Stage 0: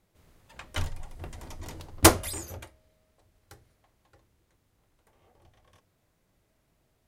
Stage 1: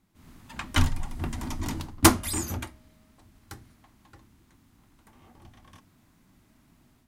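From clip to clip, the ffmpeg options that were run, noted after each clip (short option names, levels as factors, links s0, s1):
-af "equalizer=f=250:t=o:w=1:g=12,equalizer=f=500:t=o:w=1:g=-12,equalizer=f=1000:t=o:w=1:g=4,dynaudnorm=f=140:g=3:m=2.82,volume=0.891"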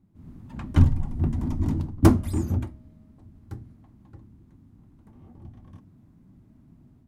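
-af "tiltshelf=f=1100:g=8,aeval=exprs='clip(val(0),-1,0.282)':c=same,equalizer=f=130:w=0.43:g=9.5,volume=0.447"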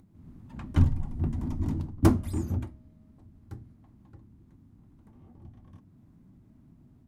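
-af "acompressor=mode=upward:threshold=0.00501:ratio=2.5,volume=0.596"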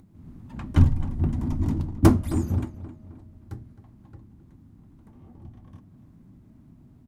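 -filter_complex "[0:a]asplit=2[s0][s1];[s1]adelay=264,lowpass=f=3600:p=1,volume=0.178,asplit=2[s2][s3];[s3]adelay=264,lowpass=f=3600:p=1,volume=0.44,asplit=2[s4][s5];[s5]adelay=264,lowpass=f=3600:p=1,volume=0.44,asplit=2[s6][s7];[s7]adelay=264,lowpass=f=3600:p=1,volume=0.44[s8];[s0][s2][s4][s6][s8]amix=inputs=5:normalize=0,volume=1.68"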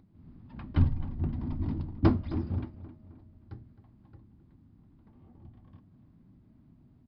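-af "aresample=11025,aresample=44100,volume=0.447"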